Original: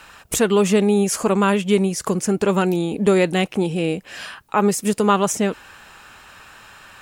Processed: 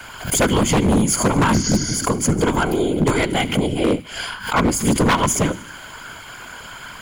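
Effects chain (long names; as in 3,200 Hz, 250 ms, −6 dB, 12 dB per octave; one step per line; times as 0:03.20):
gain on one half-wave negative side −3 dB
hum removal 192.7 Hz, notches 33
healed spectral selection 0:01.56–0:01.94, 220–6,900 Hz after
EQ curve with evenly spaced ripples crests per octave 1.8, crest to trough 14 dB
in parallel at +2.5 dB: downward compressor, threshold −33 dBFS, peak gain reduction 23 dB
on the sum: random phases in short frames
wave folding −9.5 dBFS
on a send: delay with a high-pass on its return 75 ms, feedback 72%, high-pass 1,500 Hz, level −19 dB
on the sum: background raised ahead of every attack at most 120 dB per second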